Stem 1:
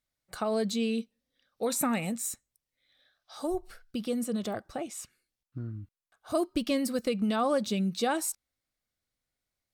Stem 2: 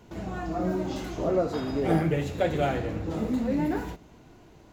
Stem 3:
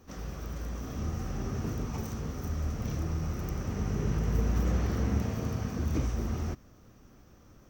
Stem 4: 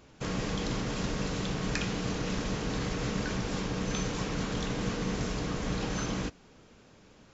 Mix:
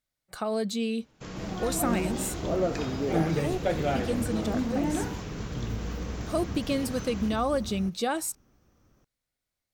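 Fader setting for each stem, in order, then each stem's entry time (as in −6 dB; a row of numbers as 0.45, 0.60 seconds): 0.0, −2.0, −8.0, −7.0 decibels; 0.00, 1.25, 1.35, 1.00 seconds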